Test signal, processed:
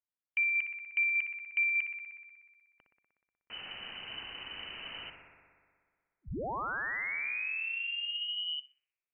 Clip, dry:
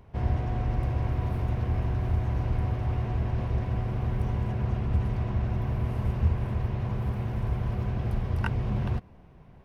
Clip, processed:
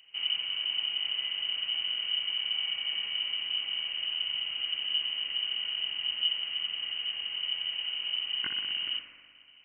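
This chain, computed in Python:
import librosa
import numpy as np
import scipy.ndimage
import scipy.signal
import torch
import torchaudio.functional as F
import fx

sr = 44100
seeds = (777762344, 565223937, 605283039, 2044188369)

p1 = x + fx.echo_thinned(x, sr, ms=61, feedback_pct=80, hz=200.0, wet_db=-7.5, dry=0)
p2 = fx.freq_invert(p1, sr, carrier_hz=3000)
y = p2 * librosa.db_to_amplitude(-7.0)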